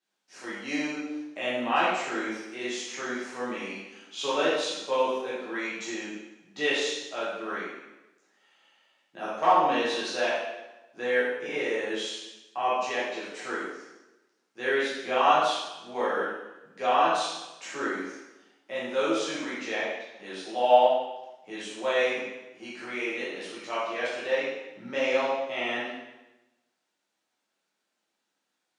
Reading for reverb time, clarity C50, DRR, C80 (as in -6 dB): 1.0 s, -1.5 dB, -10.0 dB, 2.5 dB